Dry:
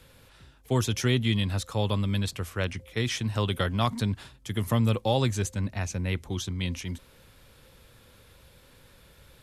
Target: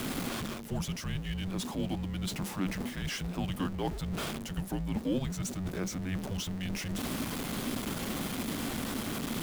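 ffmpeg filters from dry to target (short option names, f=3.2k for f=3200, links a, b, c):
-af "aeval=exprs='val(0)+0.5*0.0355*sgn(val(0))':c=same,areverse,acompressor=threshold=-31dB:ratio=6,areverse,equalizer=f=590:w=1:g=11,afreqshift=-280,volume=-3.5dB"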